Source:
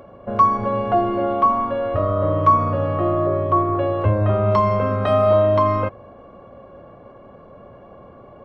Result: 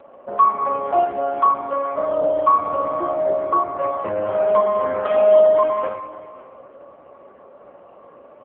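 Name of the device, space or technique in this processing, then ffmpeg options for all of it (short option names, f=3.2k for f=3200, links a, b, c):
satellite phone: -af "highpass=340,lowpass=3.4k,aecho=1:1:50|112.5|190.6|288.3|410.4:0.631|0.398|0.251|0.158|0.1,aecho=1:1:546:0.126" -ar 8000 -c:a libopencore_amrnb -b:a 5900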